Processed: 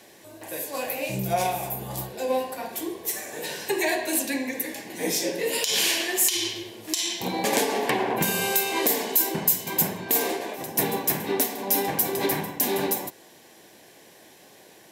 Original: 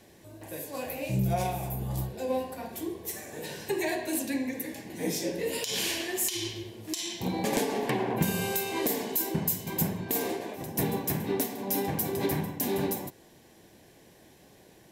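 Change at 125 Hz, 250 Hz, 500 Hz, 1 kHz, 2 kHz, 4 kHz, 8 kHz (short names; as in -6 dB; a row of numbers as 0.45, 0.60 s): -4.0, +0.5, +4.0, +6.5, +7.5, +8.0, +8.0 dB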